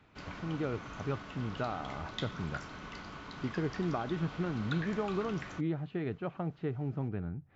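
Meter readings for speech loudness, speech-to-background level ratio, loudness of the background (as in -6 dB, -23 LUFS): -37.0 LUFS, 7.5 dB, -44.5 LUFS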